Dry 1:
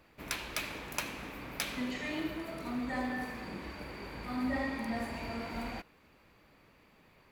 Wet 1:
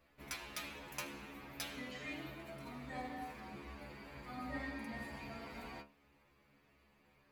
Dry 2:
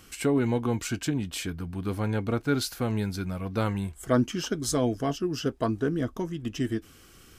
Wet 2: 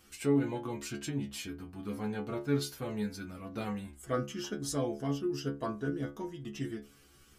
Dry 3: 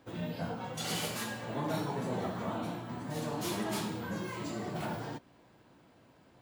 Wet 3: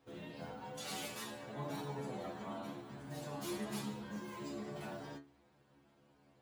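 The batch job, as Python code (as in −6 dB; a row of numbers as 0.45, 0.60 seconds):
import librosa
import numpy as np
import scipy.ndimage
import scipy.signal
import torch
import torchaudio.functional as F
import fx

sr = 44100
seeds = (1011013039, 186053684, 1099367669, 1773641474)

y = fx.stiff_resonator(x, sr, f0_hz=69.0, decay_s=0.35, stiffness=0.002)
y = F.gain(torch.from_numpy(y), 1.0).numpy()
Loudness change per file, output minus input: −8.5, −7.0, −8.0 LU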